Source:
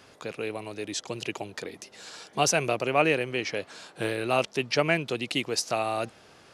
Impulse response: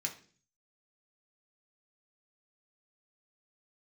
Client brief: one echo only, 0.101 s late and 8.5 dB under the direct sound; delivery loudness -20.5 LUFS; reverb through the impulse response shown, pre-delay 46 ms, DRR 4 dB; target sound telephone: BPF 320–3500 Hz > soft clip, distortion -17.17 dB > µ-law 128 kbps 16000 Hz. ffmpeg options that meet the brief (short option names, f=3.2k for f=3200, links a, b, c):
-filter_complex "[0:a]aecho=1:1:101:0.376,asplit=2[a][b];[1:a]atrim=start_sample=2205,adelay=46[c];[b][c]afir=irnorm=-1:irlink=0,volume=-5dB[d];[a][d]amix=inputs=2:normalize=0,highpass=320,lowpass=3.5k,asoftclip=threshold=-16dB,volume=9dB" -ar 16000 -c:a pcm_mulaw